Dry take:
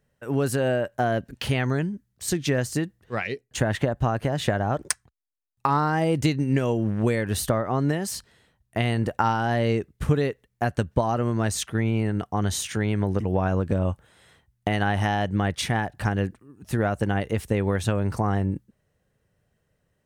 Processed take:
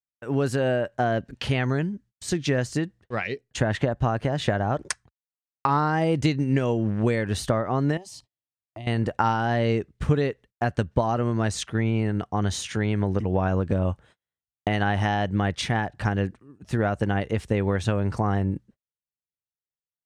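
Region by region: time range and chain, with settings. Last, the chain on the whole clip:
7.97–8.87 s: compression 2.5:1, threshold -37 dBFS + static phaser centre 300 Hz, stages 8
whole clip: low-pass 6.7 kHz 12 dB/octave; gate -49 dBFS, range -39 dB

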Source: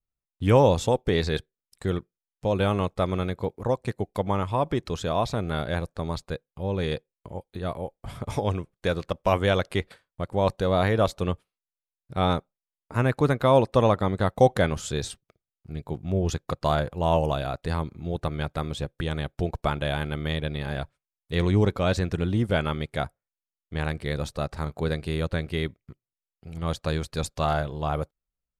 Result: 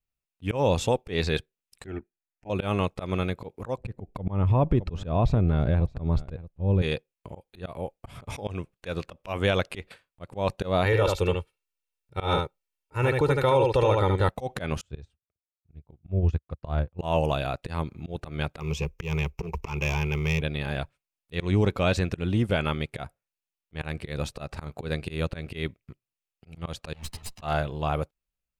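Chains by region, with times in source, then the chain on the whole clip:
1.86–2.50 s: distance through air 140 m + static phaser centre 740 Hz, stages 8
3.78–6.82 s: tilt EQ -4 dB/octave + delay 617 ms -22.5 dB
10.85–14.29 s: comb 2.2 ms, depth 75% + delay 74 ms -5.5 dB
14.81–16.99 s: low-pass 1.4 kHz 6 dB/octave + peaking EQ 71 Hz +13 dB 1.3 oct + upward expansion 2.5:1, over -33 dBFS
18.60–20.41 s: hard clipper -25 dBFS + rippled EQ curve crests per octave 0.78, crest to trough 14 dB + short-mantissa float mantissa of 6-bit
26.93–27.42 s: comb filter that takes the minimum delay 1 ms + compressor with a negative ratio -36 dBFS, ratio -0.5 + three-phase chorus
whole clip: peaking EQ 2.6 kHz +7.5 dB 0.35 oct; peak limiter -13 dBFS; slow attack 131 ms

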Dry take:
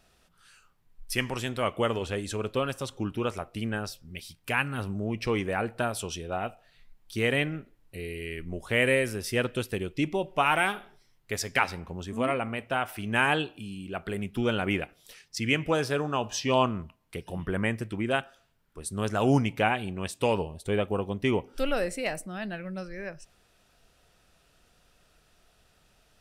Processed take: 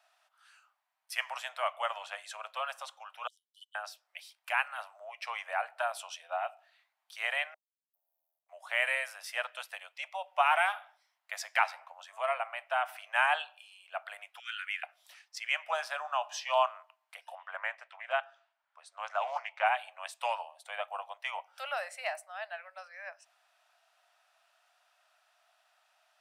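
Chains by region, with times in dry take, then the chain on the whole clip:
3.27–3.75 s: brick-wall FIR high-pass 2.9 kHz + upward expansion 2.5:1, over -56 dBFS
7.54–8.49 s: median filter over 5 samples + inverse Chebyshev band-stop 810–3900 Hz, stop band 80 dB + compression 4:1, threshold -45 dBFS
14.39–14.83 s: steep high-pass 1.5 kHz 48 dB/octave + peaking EQ 13 kHz -5 dB 0.26 oct
17.35–19.66 s: distance through air 100 m + loudspeaker Doppler distortion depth 0.23 ms
whole clip: steep high-pass 630 Hz 72 dB/octave; treble shelf 3.1 kHz -10 dB

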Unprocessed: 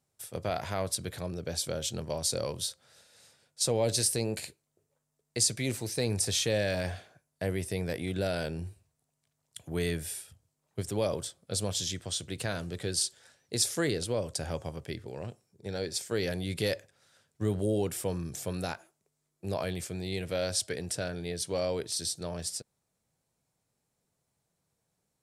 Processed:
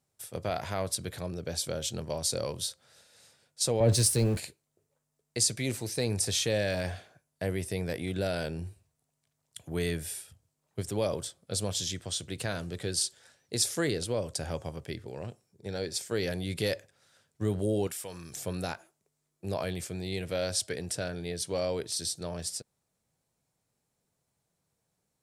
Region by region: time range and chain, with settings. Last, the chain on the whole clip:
3.80–4.39 s: jump at every zero crossing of -37.5 dBFS + bass shelf 190 Hz +12 dB + three bands expanded up and down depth 70%
17.87–18.36 s: tilt shelf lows -7.5 dB, about 680 Hz + compression 2:1, threshold -42 dBFS
whole clip: none

